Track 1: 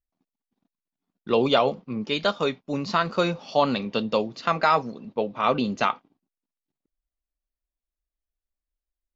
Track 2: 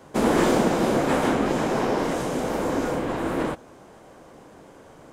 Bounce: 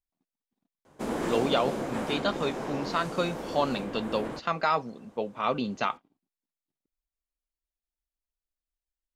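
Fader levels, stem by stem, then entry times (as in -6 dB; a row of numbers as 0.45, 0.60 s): -5.5, -11.0 dB; 0.00, 0.85 s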